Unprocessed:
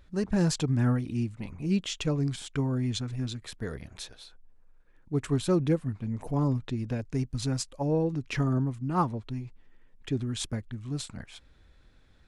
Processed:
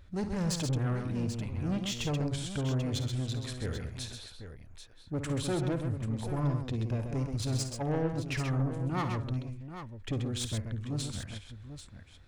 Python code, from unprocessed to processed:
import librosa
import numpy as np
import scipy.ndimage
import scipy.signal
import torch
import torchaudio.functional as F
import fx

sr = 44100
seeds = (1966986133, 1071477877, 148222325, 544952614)

p1 = fx.peak_eq(x, sr, hz=89.0, db=9.5, octaves=0.52)
p2 = 10.0 ** (-28.5 / 20.0) * np.tanh(p1 / 10.0 ** (-28.5 / 20.0))
y = p2 + fx.echo_multitap(p2, sr, ms=(54, 68, 131, 788), db=(-12.5, -15.5, -6.5, -10.5), dry=0)